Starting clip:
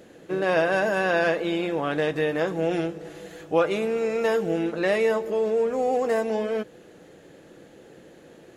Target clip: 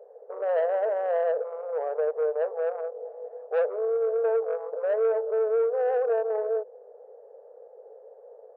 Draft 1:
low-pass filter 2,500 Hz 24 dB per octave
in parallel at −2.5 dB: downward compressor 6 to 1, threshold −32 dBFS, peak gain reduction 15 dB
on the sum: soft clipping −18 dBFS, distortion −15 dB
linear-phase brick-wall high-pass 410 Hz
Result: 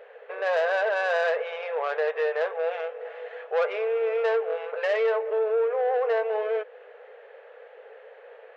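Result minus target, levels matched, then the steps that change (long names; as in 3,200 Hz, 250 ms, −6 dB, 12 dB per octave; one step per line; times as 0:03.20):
2,000 Hz band +12.5 dB
change: low-pass filter 730 Hz 24 dB per octave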